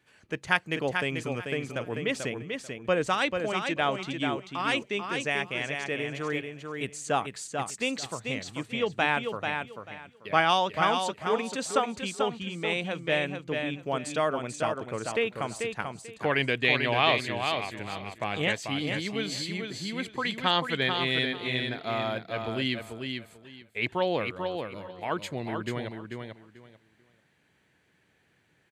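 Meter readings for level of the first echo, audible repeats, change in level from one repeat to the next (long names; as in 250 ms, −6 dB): −5.5 dB, 3, −13.5 dB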